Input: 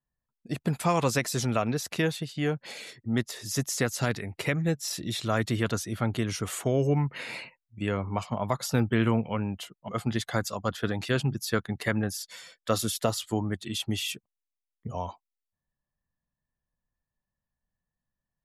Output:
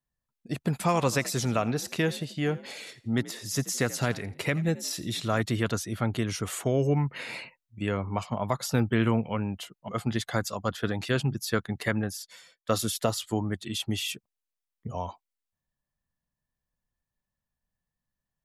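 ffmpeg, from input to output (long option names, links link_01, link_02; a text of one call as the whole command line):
ffmpeg -i in.wav -filter_complex "[0:a]asettb=1/sr,asplit=3[link_01][link_02][link_03];[link_01]atrim=end=0.714[link_04];[link_02]atrim=start=0.71:end=5.42,asetpts=PTS-STARTPTS,afade=type=in:duration=0.004:curve=qsin,afade=type=out:start_time=4.706:duration=0.004:curve=qsin,asplit=4[link_05][link_06][link_07][link_08];[link_06]adelay=84,afreqshift=51,volume=-18.5dB[link_09];[link_07]adelay=168,afreqshift=102,volume=-27.4dB[link_10];[link_08]adelay=252,afreqshift=153,volume=-36.2dB[link_11];[link_05][link_09][link_10][link_11]amix=inputs=4:normalize=0,atrim=end_sample=207711[link_12];[link_03]atrim=start=5.416[link_13];[link_04][link_12]acrossfade=duration=0.004:curve1=hsin:curve2=qsin[link_14];[link_14][link_13]acrossfade=duration=0.004:curve1=qsin:curve2=hsin,asplit=2[link_15][link_16];[link_15]atrim=end=12.69,asetpts=PTS-STARTPTS,afade=type=out:start_time=11.9:duration=0.79:silence=0.237137[link_17];[link_16]atrim=start=12.69,asetpts=PTS-STARTPTS,afade=type=in:duration=0.004:curve=hsin:silence=0.237137[link_18];[link_17][link_18]concat=n=2:v=0:a=1" out.wav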